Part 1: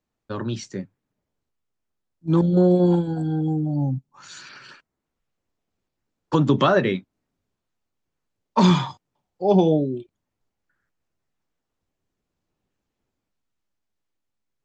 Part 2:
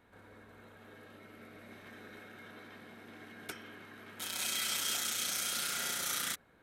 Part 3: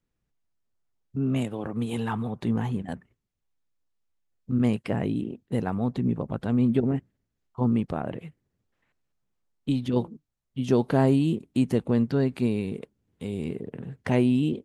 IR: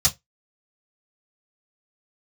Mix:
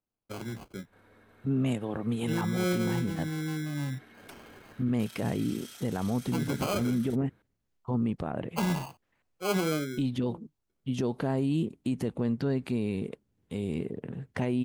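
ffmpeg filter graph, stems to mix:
-filter_complex "[0:a]acrusher=samples=24:mix=1:aa=0.000001,volume=-10dB[link_01];[1:a]acompressor=threshold=-42dB:ratio=6,bandreject=frequency=6800:width=15,asoftclip=type=tanh:threshold=-27dB,adelay=800,volume=-3.5dB[link_02];[2:a]adelay=300,volume=-1dB[link_03];[link_01][link_02][link_03]amix=inputs=3:normalize=0,alimiter=limit=-21dB:level=0:latency=1:release=58"

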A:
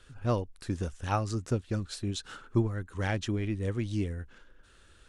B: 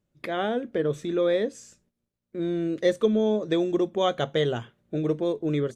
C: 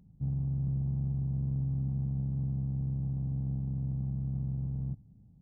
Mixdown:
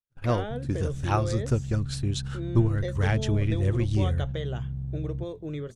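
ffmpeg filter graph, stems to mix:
ffmpeg -i stem1.wav -i stem2.wav -i stem3.wav -filter_complex "[0:a]agate=range=-22dB:threshold=-44dB:ratio=16:detection=peak,volume=3dB[link_01];[1:a]acompressor=threshold=-24dB:ratio=6,volume=-6dB[link_02];[2:a]acompressor=threshold=-37dB:ratio=3,adelay=300,volume=1.5dB[link_03];[link_01][link_02][link_03]amix=inputs=3:normalize=0,agate=range=-33dB:threshold=-57dB:ratio=3:detection=peak,asubboost=boost=3:cutoff=130" out.wav

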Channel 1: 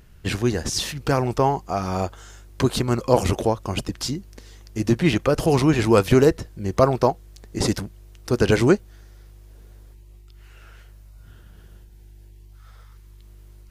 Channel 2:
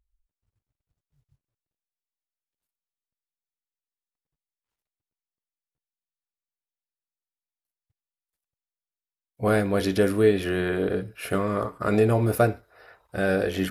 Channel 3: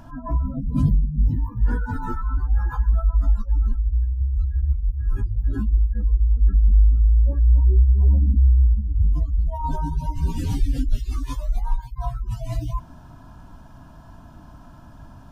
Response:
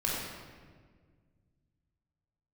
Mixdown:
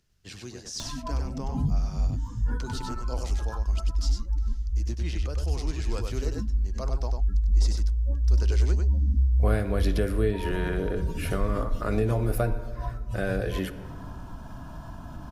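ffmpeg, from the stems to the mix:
-filter_complex "[0:a]equalizer=frequency=5500:width=0.87:gain=12,volume=-13dB,asplit=2[link_01][link_02];[link_02]volume=-12.5dB[link_03];[1:a]volume=-2.5dB,asplit=3[link_04][link_05][link_06];[link_05]volume=-20.5dB[link_07];[2:a]acompressor=mode=upward:threshold=-20dB:ratio=2.5,adelay=800,volume=-8dB,asplit=2[link_08][link_09];[link_09]volume=-22.5dB[link_10];[link_06]apad=whole_len=604525[link_11];[link_01][link_11]sidechaingate=range=-8dB:threshold=-55dB:ratio=16:detection=peak[link_12];[3:a]atrim=start_sample=2205[link_13];[link_07][link_10]amix=inputs=2:normalize=0[link_14];[link_14][link_13]afir=irnorm=-1:irlink=0[link_15];[link_03]aecho=0:1:97:1[link_16];[link_12][link_04][link_08][link_15][link_16]amix=inputs=5:normalize=0,acrossover=split=160[link_17][link_18];[link_18]acompressor=threshold=-29dB:ratio=2[link_19];[link_17][link_19]amix=inputs=2:normalize=0"

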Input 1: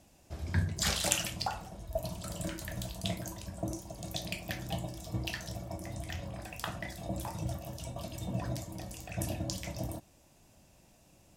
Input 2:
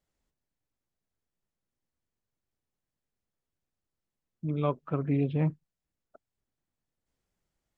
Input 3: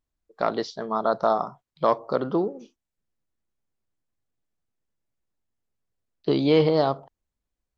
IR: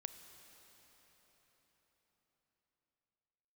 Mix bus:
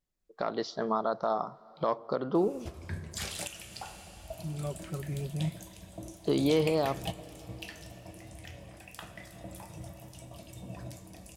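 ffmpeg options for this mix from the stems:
-filter_complex "[0:a]equalizer=frequency=400:width_type=o:width=0.67:gain=4,equalizer=frequency=2500:width_type=o:width=0.67:gain=5,equalizer=frequency=10000:width_type=o:width=0.67:gain=6,adelay=2350,volume=0.5dB,asplit=2[link_01][link_02];[link_02]volume=-5.5dB[link_03];[1:a]equalizer=frequency=1000:width_type=o:width=1.7:gain=-7.5,aecho=1:1:5.4:0.84,volume=-8dB[link_04];[2:a]dynaudnorm=framelen=150:gausssize=3:maxgain=8dB,volume=-7dB,asplit=3[link_05][link_06][link_07];[link_06]volume=-13dB[link_08];[link_07]apad=whole_len=604967[link_09];[link_01][link_09]sidechaingate=range=-33dB:threshold=-45dB:ratio=16:detection=peak[link_10];[3:a]atrim=start_sample=2205[link_11];[link_03][link_08]amix=inputs=2:normalize=0[link_12];[link_12][link_11]afir=irnorm=-1:irlink=0[link_13];[link_10][link_04][link_05][link_13]amix=inputs=4:normalize=0,alimiter=limit=-17dB:level=0:latency=1:release=398"

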